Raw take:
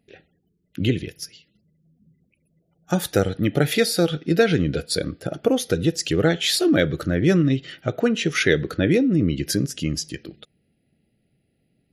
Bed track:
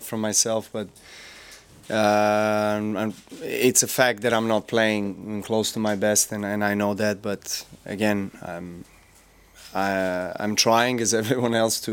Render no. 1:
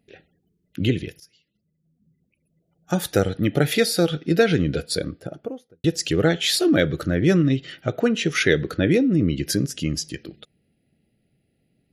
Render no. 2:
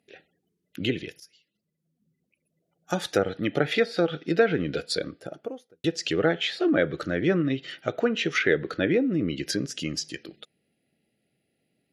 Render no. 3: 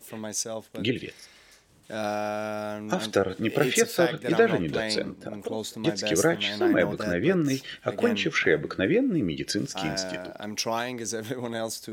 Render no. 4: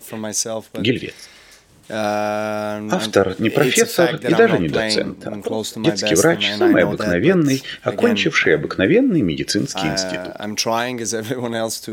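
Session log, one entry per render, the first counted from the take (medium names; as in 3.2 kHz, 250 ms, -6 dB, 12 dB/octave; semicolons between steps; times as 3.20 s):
1.20–3.19 s: fade in, from -16 dB; 4.80–5.84 s: studio fade out
high-pass 440 Hz 6 dB/octave; low-pass that closes with the level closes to 1.8 kHz, closed at -18 dBFS
add bed track -10 dB
trim +9 dB; peak limiter -2 dBFS, peak gain reduction 3 dB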